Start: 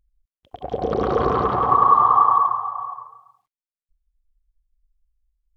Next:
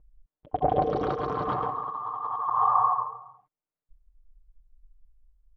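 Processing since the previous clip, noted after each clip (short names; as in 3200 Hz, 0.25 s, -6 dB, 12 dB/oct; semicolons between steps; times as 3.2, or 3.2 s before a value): low-pass opened by the level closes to 1000 Hz, open at -14 dBFS; comb 6.6 ms, depth 56%; negative-ratio compressor -28 dBFS, ratio -1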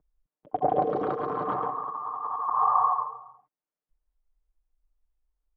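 three-band isolator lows -17 dB, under 150 Hz, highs -13 dB, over 2300 Hz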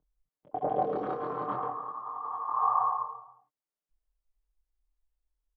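doubler 24 ms -2 dB; gain -6.5 dB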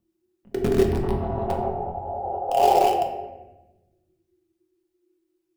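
in parallel at -11 dB: bit-crush 4-bit; on the sum: frequency shift -370 Hz; reverb RT60 1.1 s, pre-delay 5 ms, DRR 2 dB; gain +5 dB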